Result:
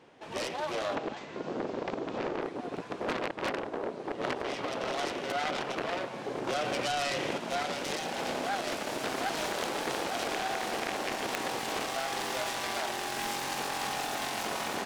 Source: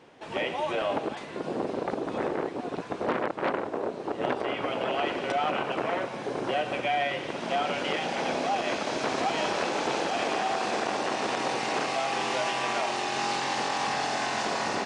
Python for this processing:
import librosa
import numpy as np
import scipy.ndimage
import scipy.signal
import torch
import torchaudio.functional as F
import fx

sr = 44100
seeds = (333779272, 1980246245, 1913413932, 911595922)

y = fx.self_delay(x, sr, depth_ms=0.31)
y = fx.steep_lowpass(y, sr, hz=7800.0, slope=48, at=(0.95, 2.42))
y = fx.env_flatten(y, sr, amount_pct=70, at=(6.47, 7.38))
y = y * librosa.db_to_amplitude(-3.5)